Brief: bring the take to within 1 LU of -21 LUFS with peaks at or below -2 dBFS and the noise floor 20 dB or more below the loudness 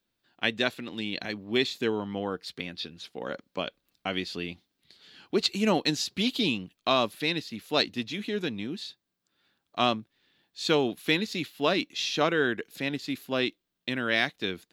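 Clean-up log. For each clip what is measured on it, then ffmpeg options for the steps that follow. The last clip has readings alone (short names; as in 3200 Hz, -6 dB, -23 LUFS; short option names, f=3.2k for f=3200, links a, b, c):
loudness -29.5 LUFS; peak -9.0 dBFS; loudness target -21.0 LUFS
-> -af "volume=8.5dB,alimiter=limit=-2dB:level=0:latency=1"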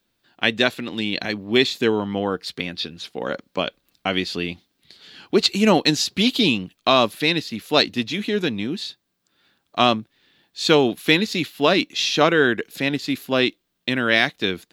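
loudness -21.0 LUFS; peak -2.0 dBFS; noise floor -73 dBFS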